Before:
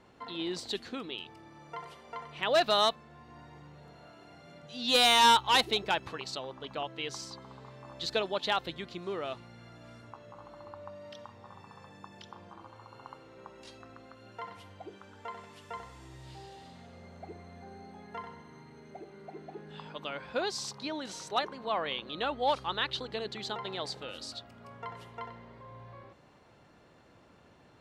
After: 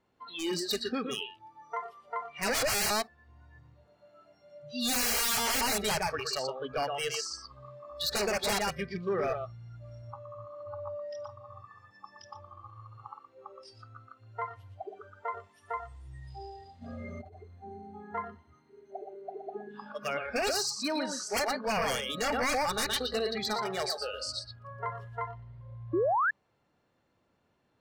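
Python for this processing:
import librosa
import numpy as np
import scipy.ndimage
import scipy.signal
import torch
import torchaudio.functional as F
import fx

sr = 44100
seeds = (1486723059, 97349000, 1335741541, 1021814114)

p1 = x + fx.echo_single(x, sr, ms=119, db=-6.0, dry=0)
p2 = 10.0 ** (-30.0 / 20.0) * (np.abs((p1 / 10.0 ** (-30.0 / 20.0) + 3.0) % 4.0 - 2.0) - 1.0)
p3 = fx.over_compress(p2, sr, threshold_db=-51.0, ratio=-1.0, at=(16.81, 17.37), fade=0.02)
p4 = fx.noise_reduce_blind(p3, sr, reduce_db=21)
p5 = fx.spec_paint(p4, sr, seeds[0], shape='rise', start_s=25.93, length_s=0.38, low_hz=310.0, high_hz=1800.0, level_db=-33.0)
y = F.gain(torch.from_numpy(p5), 6.5).numpy()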